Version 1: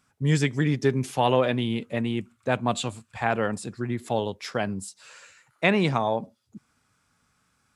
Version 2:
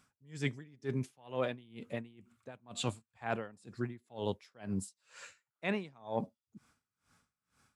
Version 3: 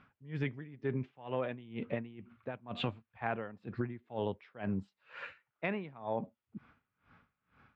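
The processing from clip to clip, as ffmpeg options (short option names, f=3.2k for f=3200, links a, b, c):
-af "areverse,acompressor=threshold=-29dB:ratio=6,areverse,aeval=exprs='val(0)*pow(10,-27*(0.5-0.5*cos(2*PI*2.1*n/s))/20)':c=same"
-af "lowpass=f=2.8k:w=0.5412,lowpass=f=2.8k:w=1.3066,acompressor=threshold=-39dB:ratio=12,volume=8dB"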